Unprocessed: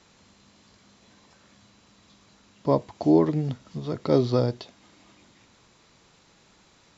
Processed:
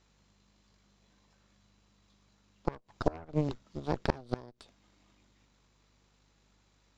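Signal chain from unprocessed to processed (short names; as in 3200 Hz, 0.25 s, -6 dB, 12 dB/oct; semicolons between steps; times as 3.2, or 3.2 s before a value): hum 50 Hz, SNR 29 dB; added harmonics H 3 -8 dB, 5 -23 dB, 6 -14 dB, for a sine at -6 dBFS; flipped gate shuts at -15 dBFS, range -27 dB; gain +3 dB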